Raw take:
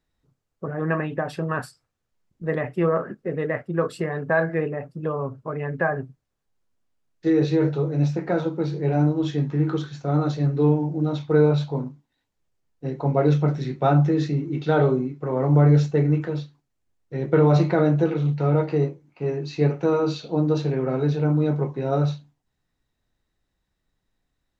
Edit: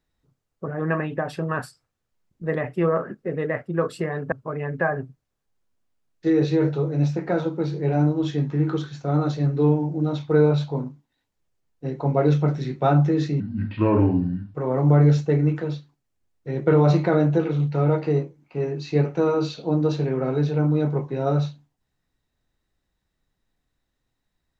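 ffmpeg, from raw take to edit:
-filter_complex "[0:a]asplit=4[s0][s1][s2][s3];[s0]atrim=end=4.322[s4];[s1]atrim=start=5.318:end=14.404[s5];[s2]atrim=start=14.4:end=15.2,asetpts=PTS-STARTPTS,asetrate=30870,aresample=44100[s6];[s3]atrim=start=15.196[s7];[s4][s5]acrossfade=d=0.004:c1=hsin:c2=hsin[s8];[s8][s6]acrossfade=d=0.004:c1=hsin:c2=hsin[s9];[s9][s7]acrossfade=d=0.004:c1=hsin:c2=hsin"

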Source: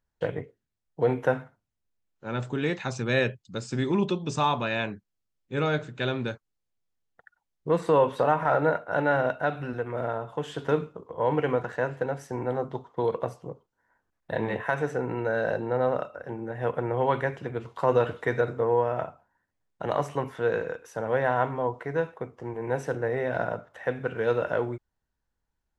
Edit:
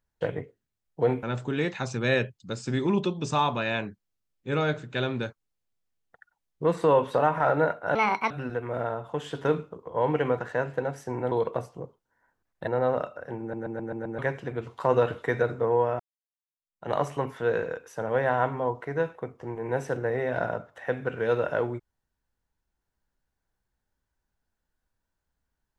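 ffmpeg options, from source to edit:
-filter_complex "[0:a]asplit=13[s0][s1][s2][s3][s4][s5][s6][s7][s8][s9][s10][s11][s12];[s0]atrim=end=1.232[s13];[s1]atrim=start=2.278:end=9.004[s14];[s2]atrim=start=9:end=9.54,asetpts=PTS-STARTPTS,asetrate=67032,aresample=44100,atrim=end_sample=15667,asetpts=PTS-STARTPTS[s15];[s3]atrim=start=9.536:end=12.552[s16];[s4]atrim=start=12.988:end=14.352[s17];[s5]atrim=start=15.658:end=16.522[s18];[s6]atrim=start=16.388:end=16.522[s19];[s7]atrim=start=16.388:end=16.522[s20];[s8]atrim=start=16.388:end=16.522[s21];[s9]atrim=start=16.388:end=16.522[s22];[s10]atrim=start=16.388:end=16.522[s23];[s11]atrim=start=17.168:end=18.98,asetpts=PTS-STARTPTS,afade=t=out:st=1.808:d=0.004:c=hsin[s24];[s12]atrim=start=18.98,asetpts=PTS-STARTPTS,afade=t=in:d=0.91:c=exp[s25];[s13][s14]acrossfade=d=0.004:c1=hsin:c2=hsin[s26];[s26][s15]acrossfade=d=0.004:c1=hsin:c2=hsin[s27];[s27][s16]acrossfade=d=0.004:c1=hsin:c2=hsin[s28];[s28][s17]acrossfade=d=0.004:c1=hsin:c2=hsin[s29];[s29][s18]acrossfade=d=0.004:c1=hsin:c2=hsin[s30];[s30][s19]acrossfade=d=0.004:c1=hsin:c2=hsin[s31];[s31][s20]acrossfade=d=0.004:c1=hsin:c2=hsin[s32];[s32][s21]acrossfade=d=0.004:c1=hsin:c2=hsin[s33];[s33][s22]acrossfade=d=0.004:c1=hsin:c2=hsin[s34];[s34][s23]acrossfade=d=0.004:c1=hsin:c2=hsin[s35];[s24][s25]concat=n=2:v=0:a=1[s36];[s35][s36]acrossfade=d=0.004:c1=hsin:c2=hsin"

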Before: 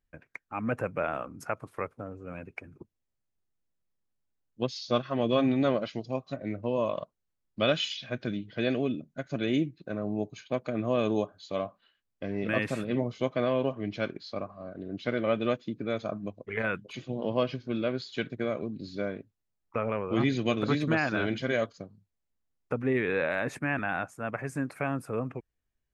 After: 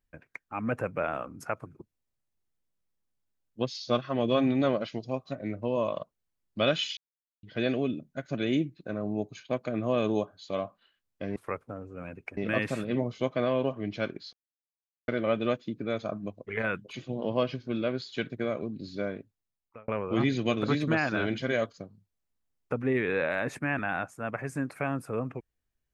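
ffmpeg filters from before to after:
-filter_complex "[0:a]asplit=9[s0][s1][s2][s3][s4][s5][s6][s7][s8];[s0]atrim=end=1.662[s9];[s1]atrim=start=2.668:end=7.98,asetpts=PTS-STARTPTS,afade=t=out:st=5.308:d=0.004:c=hsin[s10];[s2]atrim=start=7.98:end=8.44,asetpts=PTS-STARTPTS,volume=0[s11];[s3]atrim=start=8.44:end=12.372,asetpts=PTS-STARTPTS,afade=t=in:d=0.004:c=hsin[s12];[s4]atrim=start=1.658:end=2.672[s13];[s5]atrim=start=12.368:end=14.33,asetpts=PTS-STARTPTS,afade=t=out:st=1.958:d=0.004:c=hsin[s14];[s6]atrim=start=14.33:end=15.08,asetpts=PTS-STARTPTS,volume=0[s15];[s7]atrim=start=15.08:end=19.88,asetpts=PTS-STARTPTS,afade=t=in:d=0.004:c=hsin,afade=t=out:st=4.09:d=0.71[s16];[s8]atrim=start=19.88,asetpts=PTS-STARTPTS,afade=t=in:d=0.004:c=hsin[s17];[s10][s11][s12]concat=n=3:v=0:a=1[s18];[s9][s18]acrossfade=d=0.004:c1=hsin:c2=hsin[s19];[s19][s13]acrossfade=d=0.004:c1=hsin:c2=hsin[s20];[s14][s15][s16][s17]concat=n=4:v=0:a=1[s21];[s20][s21]acrossfade=d=0.004:c1=hsin:c2=hsin"

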